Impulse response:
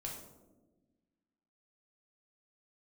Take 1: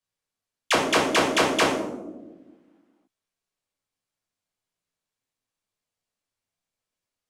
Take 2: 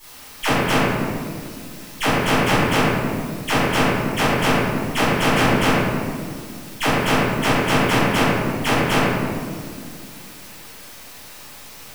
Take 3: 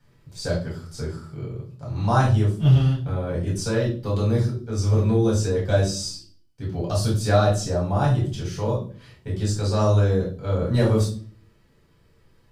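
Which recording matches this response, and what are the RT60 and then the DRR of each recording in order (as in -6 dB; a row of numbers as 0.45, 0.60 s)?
1; 1.2, 2.0, 0.45 s; -1.5, -16.5, -5.5 dB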